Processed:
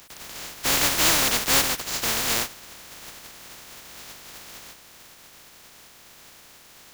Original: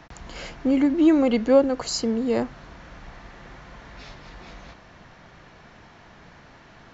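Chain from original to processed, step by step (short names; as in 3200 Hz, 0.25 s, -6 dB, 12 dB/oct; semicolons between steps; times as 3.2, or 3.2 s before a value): spectral contrast lowered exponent 0.11; soft clip -13.5 dBFS, distortion -13 dB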